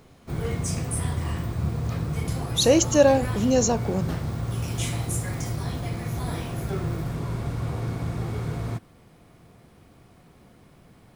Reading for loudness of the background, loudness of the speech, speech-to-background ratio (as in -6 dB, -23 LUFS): -29.5 LUFS, -21.5 LUFS, 8.0 dB